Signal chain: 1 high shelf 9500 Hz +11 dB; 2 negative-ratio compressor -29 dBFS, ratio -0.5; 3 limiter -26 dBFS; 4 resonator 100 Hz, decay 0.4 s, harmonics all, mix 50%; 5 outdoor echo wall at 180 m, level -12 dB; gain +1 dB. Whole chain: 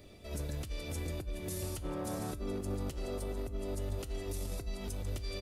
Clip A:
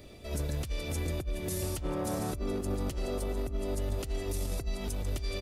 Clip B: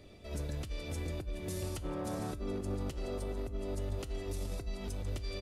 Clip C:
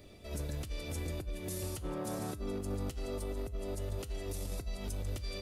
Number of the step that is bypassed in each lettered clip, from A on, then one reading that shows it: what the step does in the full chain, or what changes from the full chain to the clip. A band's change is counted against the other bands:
4, loudness change +4.5 LU; 1, 8 kHz band -3.5 dB; 5, echo-to-direct -15.0 dB to none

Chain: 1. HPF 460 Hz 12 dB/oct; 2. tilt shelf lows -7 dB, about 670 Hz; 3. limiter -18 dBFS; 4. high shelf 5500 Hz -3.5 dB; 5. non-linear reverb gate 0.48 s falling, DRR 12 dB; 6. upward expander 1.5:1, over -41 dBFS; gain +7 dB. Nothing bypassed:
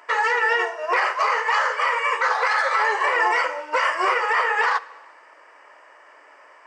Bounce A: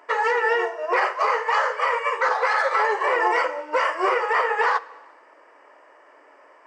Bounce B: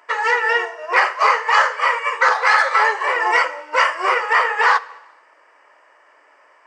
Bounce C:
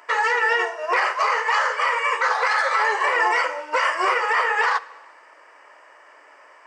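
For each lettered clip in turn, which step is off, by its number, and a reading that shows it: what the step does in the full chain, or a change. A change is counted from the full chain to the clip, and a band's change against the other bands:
2, loudness change -1.0 LU; 3, mean gain reduction 2.0 dB; 4, 8 kHz band +2.0 dB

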